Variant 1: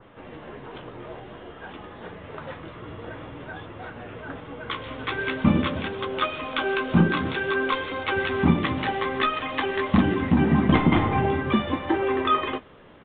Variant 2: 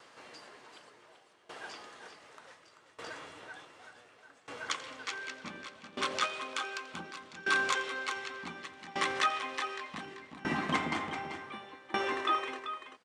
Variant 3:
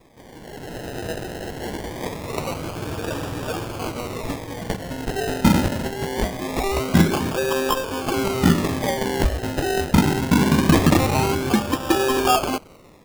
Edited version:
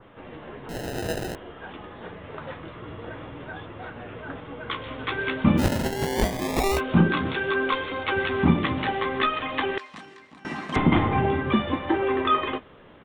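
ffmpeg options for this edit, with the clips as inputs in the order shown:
-filter_complex "[2:a]asplit=2[a][b];[0:a]asplit=4[c][d][e][f];[c]atrim=end=0.692[g];[a]atrim=start=0.688:end=1.352[h];[d]atrim=start=1.348:end=5.63[i];[b]atrim=start=5.57:end=6.81[j];[e]atrim=start=6.75:end=9.782[k];[1:a]atrim=start=9.778:end=10.762[l];[f]atrim=start=10.758[m];[g][h]acrossfade=d=0.004:c1=hsin:c2=hsin[n];[n][i]acrossfade=d=0.004:c1=hsin:c2=hsin[o];[o][j]acrossfade=d=0.06:c1=tri:c2=tri[p];[p][k]acrossfade=d=0.06:c1=tri:c2=tri[q];[q][l]acrossfade=d=0.004:c1=hsin:c2=hsin[r];[r][m]acrossfade=d=0.004:c1=hsin:c2=hsin"

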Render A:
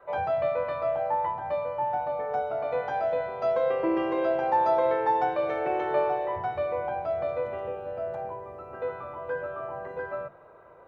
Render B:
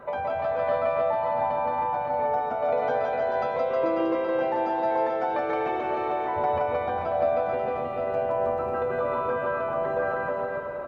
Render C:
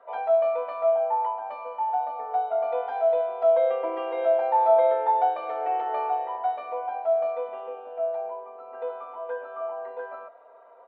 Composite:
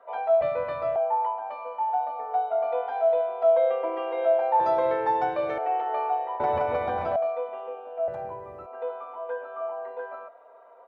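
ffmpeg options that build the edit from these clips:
-filter_complex "[0:a]asplit=3[a][b][c];[2:a]asplit=5[d][e][f][g][h];[d]atrim=end=0.412[i];[a]atrim=start=0.408:end=0.962[j];[e]atrim=start=0.958:end=4.602[k];[b]atrim=start=4.598:end=5.582[l];[f]atrim=start=5.578:end=6.402[m];[1:a]atrim=start=6.398:end=7.162[n];[g]atrim=start=7.158:end=8.082[o];[c]atrim=start=8.078:end=8.662[p];[h]atrim=start=8.658[q];[i][j]acrossfade=d=0.004:c1=hsin:c2=hsin[r];[r][k]acrossfade=d=0.004:c1=hsin:c2=hsin[s];[s][l]acrossfade=d=0.004:c1=hsin:c2=hsin[t];[t][m]acrossfade=d=0.004:c1=hsin:c2=hsin[u];[u][n]acrossfade=d=0.004:c1=hsin:c2=hsin[v];[v][o]acrossfade=d=0.004:c1=hsin:c2=hsin[w];[w][p]acrossfade=d=0.004:c1=hsin:c2=hsin[x];[x][q]acrossfade=d=0.004:c1=hsin:c2=hsin"

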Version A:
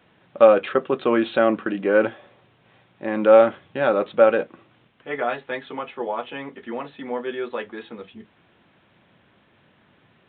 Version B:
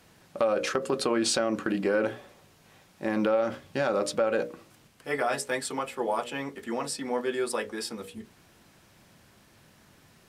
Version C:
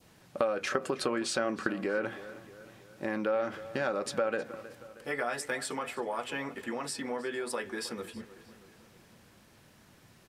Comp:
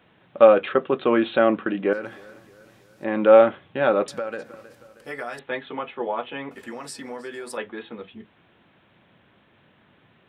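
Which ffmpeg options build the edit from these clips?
-filter_complex "[2:a]asplit=3[a][b][c];[0:a]asplit=4[d][e][f][g];[d]atrim=end=1.932[h];[a]atrim=start=1.928:end=3.042[i];[e]atrim=start=3.038:end=4.082[j];[b]atrim=start=4.078:end=5.392[k];[f]atrim=start=5.388:end=6.512[l];[c]atrim=start=6.508:end=7.572[m];[g]atrim=start=7.568[n];[h][i]acrossfade=d=0.004:c1=hsin:c2=hsin[o];[o][j]acrossfade=d=0.004:c1=hsin:c2=hsin[p];[p][k]acrossfade=d=0.004:c1=hsin:c2=hsin[q];[q][l]acrossfade=d=0.004:c1=hsin:c2=hsin[r];[r][m]acrossfade=d=0.004:c1=hsin:c2=hsin[s];[s][n]acrossfade=d=0.004:c1=hsin:c2=hsin"

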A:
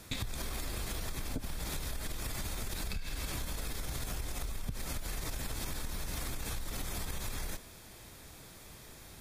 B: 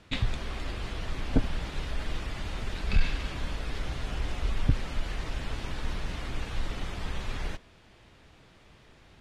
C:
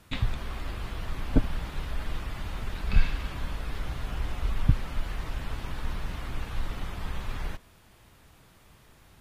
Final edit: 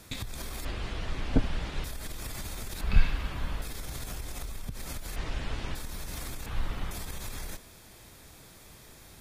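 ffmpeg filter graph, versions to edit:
-filter_complex "[1:a]asplit=2[a][b];[2:a]asplit=2[c][d];[0:a]asplit=5[e][f][g][h][i];[e]atrim=end=0.652[j];[a]atrim=start=0.648:end=1.842[k];[f]atrim=start=1.838:end=2.812[l];[c]atrim=start=2.808:end=3.622[m];[g]atrim=start=3.618:end=5.162[n];[b]atrim=start=5.158:end=5.752[o];[h]atrim=start=5.748:end=6.462[p];[d]atrim=start=6.458:end=6.912[q];[i]atrim=start=6.908[r];[j][k]acrossfade=d=0.004:c1=hsin:c2=hsin[s];[s][l]acrossfade=d=0.004:c1=hsin:c2=hsin[t];[t][m]acrossfade=d=0.004:c1=hsin:c2=hsin[u];[u][n]acrossfade=d=0.004:c1=hsin:c2=hsin[v];[v][o]acrossfade=d=0.004:c1=hsin:c2=hsin[w];[w][p]acrossfade=d=0.004:c1=hsin:c2=hsin[x];[x][q]acrossfade=d=0.004:c1=hsin:c2=hsin[y];[y][r]acrossfade=d=0.004:c1=hsin:c2=hsin"

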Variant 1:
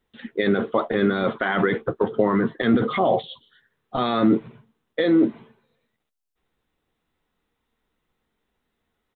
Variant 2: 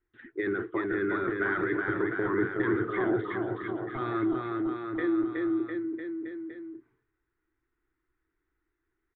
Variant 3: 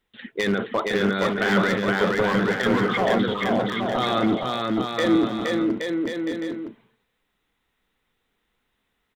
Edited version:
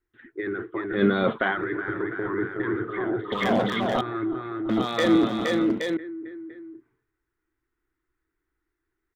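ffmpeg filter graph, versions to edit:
-filter_complex "[2:a]asplit=2[a][b];[1:a]asplit=4[c][d][e][f];[c]atrim=end=1.02[g];[0:a]atrim=start=0.92:end=1.58[h];[d]atrim=start=1.48:end=3.322[i];[a]atrim=start=3.318:end=4.012[j];[e]atrim=start=4.008:end=4.692[k];[b]atrim=start=4.688:end=5.972[l];[f]atrim=start=5.968[m];[g][h]acrossfade=d=0.1:c1=tri:c2=tri[n];[n][i]acrossfade=d=0.1:c1=tri:c2=tri[o];[o][j]acrossfade=d=0.004:c1=hsin:c2=hsin[p];[p][k]acrossfade=d=0.004:c1=hsin:c2=hsin[q];[q][l]acrossfade=d=0.004:c1=hsin:c2=hsin[r];[r][m]acrossfade=d=0.004:c1=hsin:c2=hsin"

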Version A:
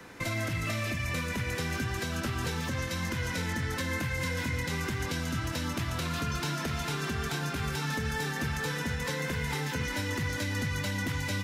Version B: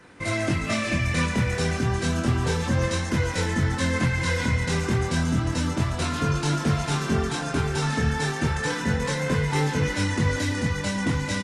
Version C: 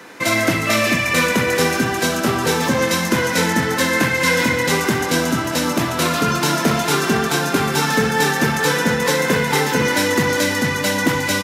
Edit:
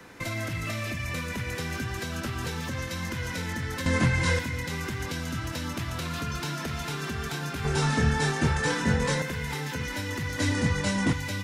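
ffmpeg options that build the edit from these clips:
-filter_complex "[1:a]asplit=3[a][b][c];[0:a]asplit=4[d][e][f][g];[d]atrim=end=3.862[h];[a]atrim=start=3.858:end=4.392[i];[e]atrim=start=4.388:end=7.652[j];[b]atrim=start=7.648:end=9.222[k];[f]atrim=start=9.218:end=10.392[l];[c]atrim=start=10.388:end=11.132[m];[g]atrim=start=11.128[n];[h][i]acrossfade=d=0.004:c1=hsin:c2=hsin[o];[o][j]acrossfade=d=0.004:c1=hsin:c2=hsin[p];[p][k]acrossfade=d=0.004:c1=hsin:c2=hsin[q];[q][l]acrossfade=d=0.004:c1=hsin:c2=hsin[r];[r][m]acrossfade=d=0.004:c1=hsin:c2=hsin[s];[s][n]acrossfade=d=0.004:c1=hsin:c2=hsin"

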